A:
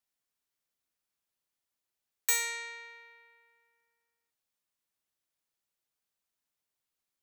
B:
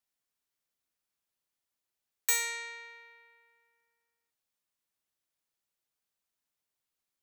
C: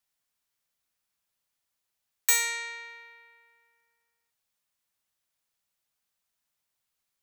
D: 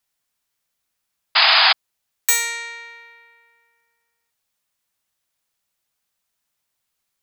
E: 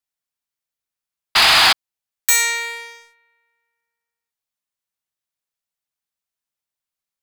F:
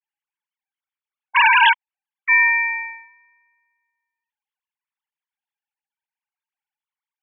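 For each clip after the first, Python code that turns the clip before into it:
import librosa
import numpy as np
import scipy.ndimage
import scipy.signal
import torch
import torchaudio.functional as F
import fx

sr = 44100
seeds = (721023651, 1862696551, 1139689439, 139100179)

y1 = x
y2 = fx.peak_eq(y1, sr, hz=340.0, db=-5.5, octaves=1.2)
y2 = y2 * librosa.db_to_amplitude(5.0)
y3 = fx.spec_paint(y2, sr, seeds[0], shape='noise', start_s=1.35, length_s=0.38, low_hz=630.0, high_hz=5100.0, level_db=-19.0)
y3 = y3 * librosa.db_to_amplitude(5.5)
y4 = fx.leveller(y3, sr, passes=3)
y4 = y4 * librosa.db_to_amplitude(-5.5)
y5 = fx.sine_speech(y4, sr)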